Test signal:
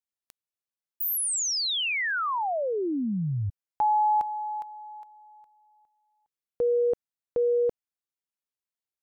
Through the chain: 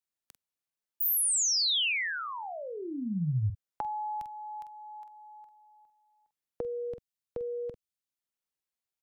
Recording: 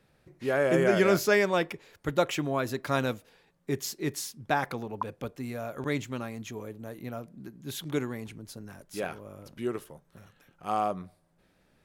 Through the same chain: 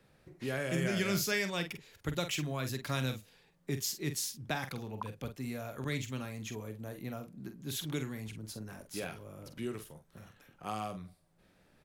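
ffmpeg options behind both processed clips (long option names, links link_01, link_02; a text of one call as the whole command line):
ffmpeg -i in.wav -filter_complex "[0:a]asplit=2[link_01][link_02];[link_02]adelay=46,volume=-9dB[link_03];[link_01][link_03]amix=inputs=2:normalize=0,acrossover=split=190|2200[link_04][link_05][link_06];[link_05]acompressor=threshold=-44dB:ratio=2.5:attack=30:release=840:knee=2.83:detection=peak[link_07];[link_04][link_07][link_06]amix=inputs=3:normalize=0" out.wav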